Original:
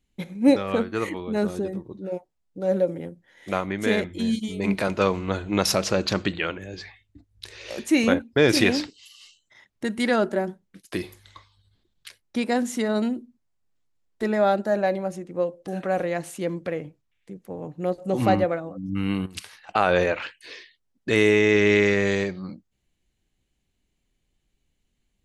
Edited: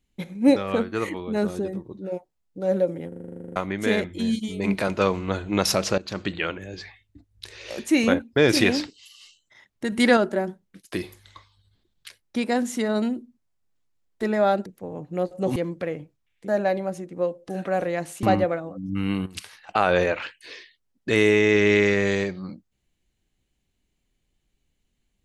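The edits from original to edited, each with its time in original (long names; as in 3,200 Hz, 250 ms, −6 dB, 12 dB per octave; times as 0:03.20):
0:03.08: stutter in place 0.04 s, 12 plays
0:05.98–0:06.41: fade in, from −18 dB
0:09.92–0:10.17: clip gain +5 dB
0:14.66–0:16.41: swap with 0:17.33–0:18.23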